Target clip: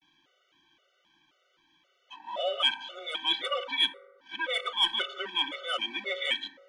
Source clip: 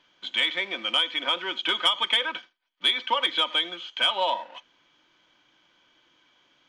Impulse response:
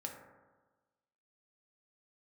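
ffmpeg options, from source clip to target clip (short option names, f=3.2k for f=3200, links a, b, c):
-filter_complex "[0:a]areverse,afreqshift=14,asplit=2[a][b];[1:a]atrim=start_sample=2205[c];[b][c]afir=irnorm=-1:irlink=0,volume=-1dB[d];[a][d]amix=inputs=2:normalize=0,afftfilt=real='re*gt(sin(2*PI*1.9*pts/sr)*(1-2*mod(floor(b*sr/1024/380),2)),0)':imag='im*gt(sin(2*PI*1.9*pts/sr)*(1-2*mod(floor(b*sr/1024/380),2)),0)':win_size=1024:overlap=0.75,volume=-5.5dB"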